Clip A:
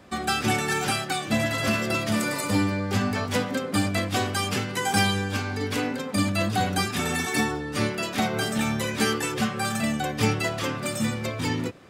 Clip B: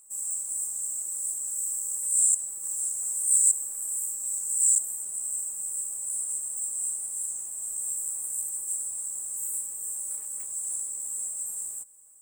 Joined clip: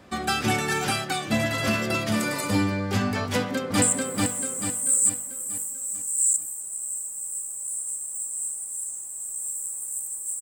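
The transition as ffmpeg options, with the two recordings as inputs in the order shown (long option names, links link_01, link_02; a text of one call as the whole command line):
ffmpeg -i cue0.wav -i cue1.wav -filter_complex "[0:a]apad=whole_dur=10.41,atrim=end=10.41,atrim=end=3.822[link_01];[1:a]atrim=start=2.238:end=8.83[link_02];[link_01][link_02]acrossfade=duration=0.004:curve1=hsin:curve2=hsin,asplit=2[link_03][link_04];[link_04]afade=type=in:start_time=3.26:duration=0.01,afade=type=out:start_time=3.82:duration=0.01,aecho=0:1:440|880|1320|1760|2200|2640:0.841395|0.378628|0.170383|0.0766721|0.0345025|0.0155261[link_05];[link_03][link_05]amix=inputs=2:normalize=0" out.wav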